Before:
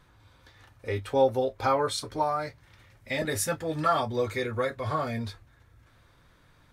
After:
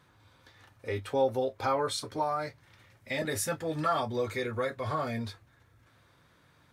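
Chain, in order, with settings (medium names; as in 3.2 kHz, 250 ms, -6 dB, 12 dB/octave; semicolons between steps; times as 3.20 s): high-pass 94 Hz; in parallel at -2 dB: peak limiter -23 dBFS, peak gain reduction 11 dB; on the sum: trim -6.5 dB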